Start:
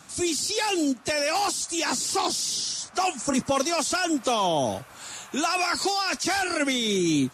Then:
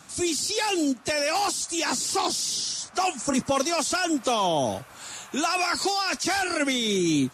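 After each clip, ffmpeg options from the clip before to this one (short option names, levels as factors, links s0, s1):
-af anull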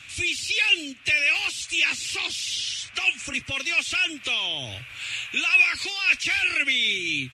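-af "acompressor=threshold=0.0355:ratio=2.5,firequalizer=gain_entry='entry(120,0);entry(170,-19);entry(260,-13);entry(830,-18);entry(2500,14);entry(4600,-6);entry(12000,-12)':delay=0.05:min_phase=1,volume=1.88"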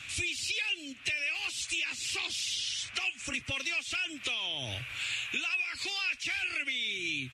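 -af "acompressor=threshold=0.0282:ratio=6"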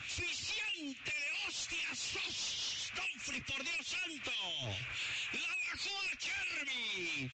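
-filter_complex "[0:a]acrossover=split=2200[s0][s1];[s0]aeval=exprs='val(0)*(1-0.7/2+0.7/2*cos(2*PI*4.7*n/s))':c=same[s2];[s1]aeval=exprs='val(0)*(1-0.7/2-0.7/2*cos(2*PI*4.7*n/s))':c=same[s3];[s2][s3]amix=inputs=2:normalize=0,asoftclip=type=tanh:threshold=0.01,aresample=16000,aresample=44100,volume=1.58"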